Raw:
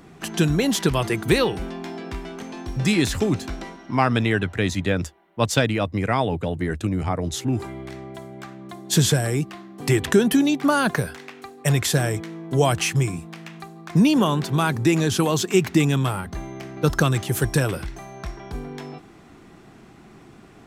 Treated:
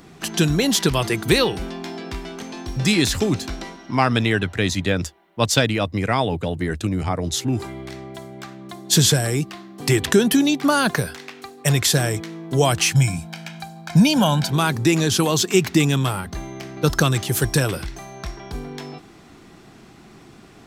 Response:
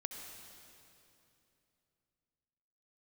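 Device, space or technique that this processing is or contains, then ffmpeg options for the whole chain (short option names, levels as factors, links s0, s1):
presence and air boost: -filter_complex "[0:a]asettb=1/sr,asplit=3[s0][s1][s2];[s0]atrim=end=12.924[s3];[s1]atrim=start=12.92:end=14.51,asetpts=PTS-STARTPTS,afade=t=in:d=0.004:c=qsin,afade=t=out:st=1.586:d=0.004:c=qsin,aecho=1:1:1.3:0.81,atrim=end_sample=70119[s4];[s2]atrim=start=14.506[s5];[s3][s4]acrossfade=d=0.004:c1=hsin:c2=qsin[s6];[s6][s5]acrossfade=d=0.004:c1=qsin:c2=hsin,equalizer=f=4600:t=o:w=1.3:g=5.5,highshelf=f=11000:g=6,volume=1.12"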